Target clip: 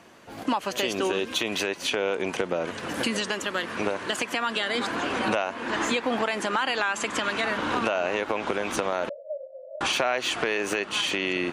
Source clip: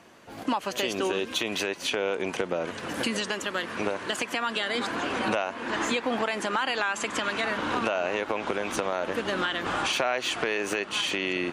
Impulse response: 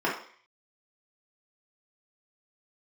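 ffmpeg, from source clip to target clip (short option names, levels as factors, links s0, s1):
-filter_complex "[0:a]asettb=1/sr,asplit=3[s0][s1][s2];[s0]atrim=end=9.094[s3];[s1]atrim=start=9.09:end=9.81,asetpts=PTS-STARTPTS,afade=t=in:d=0.004:c=qsin,afade=t=out:st=0.716:d=0.004:c=qsin,asuperpass=centerf=580:order=12:qfactor=4.3[s4];[s2]atrim=start=9.806[s5];[s3][s4]acrossfade=d=0.004:c1=hsin:c2=qsin[s6];[s6][s5]acrossfade=d=0.004:c1=qsin:c2=hsin,volume=1.19"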